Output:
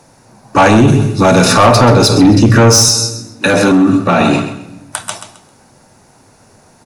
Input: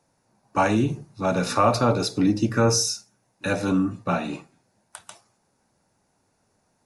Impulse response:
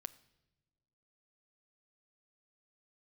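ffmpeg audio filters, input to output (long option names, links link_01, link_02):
-filter_complex "[0:a]asettb=1/sr,asplit=3[link_01][link_02][link_03];[link_01]atrim=end=0.874[link_04];[link_02]atrim=start=0.87:end=1.45,asetpts=PTS-STARTPTS,afade=type=in:duration=0.004:curve=qsin,afade=type=out:start_time=0.576:duration=0.004:curve=qsin,highshelf=frequency=4600:gain=8[link_05];[link_03]atrim=start=1.446[link_06];[link_04][link_05]acrossfade=duration=0.004:curve1=hsin:curve2=qsin[link_07];[link_07][link_06]acrossfade=duration=0.004:curve1=qsin:curve2=hsin,aecho=1:1:132|264|396:0.251|0.0653|0.017[link_08];[1:a]atrim=start_sample=2205,asetrate=37926,aresample=44100[link_09];[link_08][link_09]afir=irnorm=-1:irlink=0,asoftclip=type=tanh:threshold=-21.5dB,asettb=1/sr,asplit=3[link_10][link_11][link_12];[link_10]atrim=end=2.884[link_13];[link_11]atrim=start=2.88:end=4.21,asetpts=PTS-STARTPTS,afade=type=in:duration=0.004:curve=qsin,afade=type=out:start_time=1.326:duration=0.004:curve=qsin,highpass=140[link_14];[link_12]atrim=start=4.206[link_15];[link_13][link_14]acrossfade=duration=0.004:curve1=hsin:curve2=qsin[link_16];[link_16][link_15]acrossfade=duration=0.004:curve1=qsin:curve2=hsin,alimiter=level_in=27dB:limit=-1dB:release=50:level=0:latency=1,volume=-1dB"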